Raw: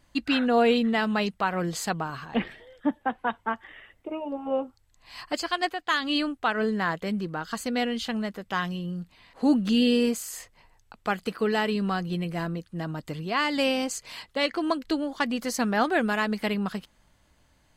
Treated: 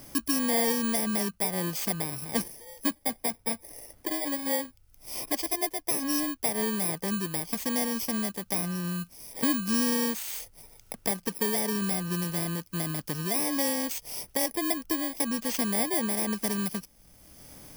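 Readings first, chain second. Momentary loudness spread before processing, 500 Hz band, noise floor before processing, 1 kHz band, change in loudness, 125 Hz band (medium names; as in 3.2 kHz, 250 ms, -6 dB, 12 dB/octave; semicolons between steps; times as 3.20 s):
12 LU, -5.5 dB, -64 dBFS, -7.5 dB, -1.0 dB, -1.5 dB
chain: bit-reversed sample order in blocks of 32 samples; three bands compressed up and down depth 70%; trim -2.5 dB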